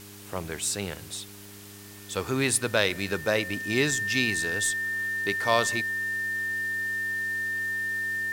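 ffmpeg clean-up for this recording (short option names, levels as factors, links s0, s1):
-af "adeclick=t=4,bandreject=f=101.1:t=h:w=4,bandreject=f=202.2:t=h:w=4,bandreject=f=303.3:t=h:w=4,bandreject=f=404.4:t=h:w=4,bandreject=f=1800:w=30,afftdn=nr=28:nf=-45"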